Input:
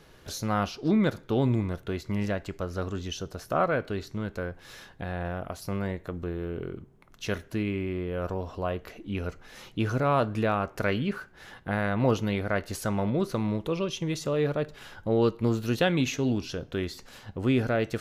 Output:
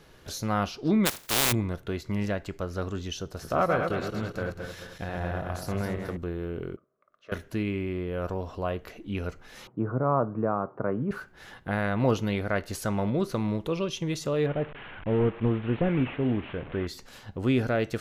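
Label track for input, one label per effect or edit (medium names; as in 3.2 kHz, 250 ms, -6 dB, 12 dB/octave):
1.050000	1.510000	spectral contrast reduction exponent 0.16
3.240000	6.170000	backward echo that repeats 109 ms, feedback 63%, level -4.5 dB
6.760000	7.320000	two resonant band-passes 850 Hz, apart 0.99 oct
9.670000	11.110000	Chebyshev band-pass 120–1200 Hz, order 3
14.460000	16.870000	one-bit delta coder 16 kbps, step -36.5 dBFS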